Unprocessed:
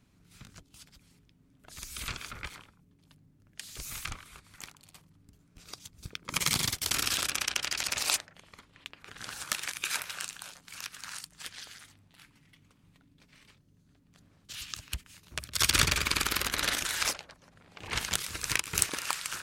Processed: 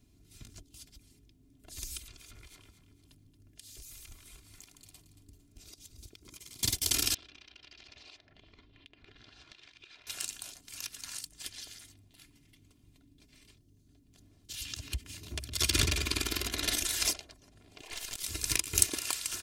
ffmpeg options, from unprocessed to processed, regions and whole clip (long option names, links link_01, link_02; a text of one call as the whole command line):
ffmpeg -i in.wav -filter_complex "[0:a]asettb=1/sr,asplit=3[link_01][link_02][link_03];[link_01]atrim=end=1.974[link_04];[link_02]atrim=start=1.97:end=6.63,asetpts=PTS-STARTPTS,afade=type=in:duration=0.004:curve=qsin,afade=type=out:start_time=4.656:duration=0.004:curve=qsin,acompressor=threshold=-49dB:ratio=6:attack=3.2:release=140:knee=1:detection=peak,aecho=1:1:227|454|681|908:0.266|0.101|0.0384|0.0146,atrim=end_sample=205506[link_05];[link_03]atrim=start=6.626[link_06];[link_04][link_05]acrossfade=duration=0.004:curve1=hsin:curve2=qsin[link_07];[link_07][link_06]acrossfade=duration=0.004:curve1=qsin:curve2=hsin,asettb=1/sr,asplit=3[link_08][link_09][link_10];[link_08]atrim=end=7.144[link_11];[link_09]atrim=start=7.14:end=10.07,asetpts=PTS-STARTPTS,afade=type=in:duration=0.004:curve=qsin,afade=type=out:start_time=2.926:duration=0.004:curve=qsin,lowpass=frequency=4100:width=0.5412,lowpass=frequency=4100:width=1.3066,acompressor=threshold=-50dB:ratio=5:attack=3.2:release=140:knee=1:detection=peak[link_12];[link_10]atrim=start=10.066[link_13];[link_11][link_12]acrossfade=duration=0.004:curve1=hsin:curve2=qsin[link_14];[link_14][link_13]acrossfade=duration=0.004:curve1=qsin:curve2=hsin,asettb=1/sr,asplit=3[link_15][link_16][link_17];[link_15]atrim=end=14.654[link_18];[link_16]atrim=start=14.65:end=16.68,asetpts=PTS-STARTPTS,afade=type=in:duration=0.004:curve=qsin,afade=type=out:start_time=2.026:duration=0.004:curve=qsin,highpass=52,highshelf=frequency=5700:gain=-8.5,acompressor=mode=upward:threshold=-33dB:ratio=2.5:attack=3.2:release=140:knee=2.83:detection=peak[link_19];[link_17]atrim=start=16.676[link_20];[link_18][link_19]acrossfade=duration=0.004:curve1=hsin:curve2=qsin[link_21];[link_21][link_20]acrossfade=duration=0.004:curve1=qsin:curve2=hsin,asettb=1/sr,asplit=3[link_22][link_23][link_24];[link_22]atrim=end=17.814[link_25];[link_23]atrim=start=17.81:end=18.23,asetpts=PTS-STARTPTS,afade=type=in:duration=0.004:curve=qsin,afade=type=out:start_time=0.416:duration=0.004:curve=qsin,highpass=frequency=470:width=0.5412,highpass=frequency=470:width=1.3066,acompressor=threshold=-32dB:ratio=4:attack=3.2:release=140:knee=1:detection=peak,aeval=exprs='(tanh(28.2*val(0)+0.45)-tanh(0.45))/28.2':channel_layout=same[link_26];[link_24]atrim=start=18.226[link_27];[link_25][link_26]acrossfade=duration=0.004:curve1=hsin:curve2=qsin[link_28];[link_28][link_27]acrossfade=duration=0.004:curve1=qsin:curve2=hsin,equalizer=frequency=1300:width=0.68:gain=-13.5,aecho=1:1:2.9:0.62,volume=2dB" out.wav